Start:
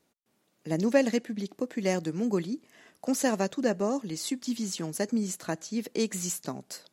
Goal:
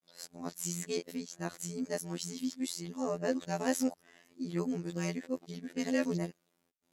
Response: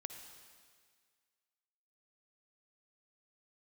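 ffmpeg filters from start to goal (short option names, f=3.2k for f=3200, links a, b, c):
-af "areverse,afftfilt=real='hypot(re,im)*cos(PI*b)':imag='0':win_size=2048:overlap=0.75,volume=-2dB"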